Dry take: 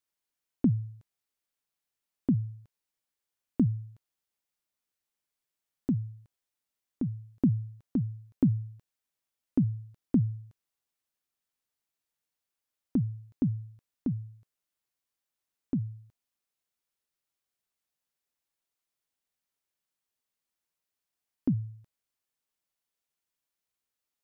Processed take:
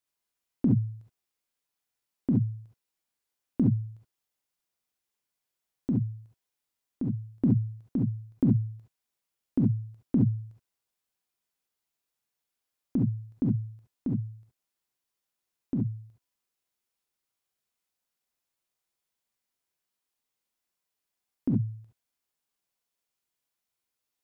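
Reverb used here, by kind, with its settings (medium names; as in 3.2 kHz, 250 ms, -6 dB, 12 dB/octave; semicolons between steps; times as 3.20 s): gated-style reverb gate 90 ms rising, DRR 0 dB; trim -1 dB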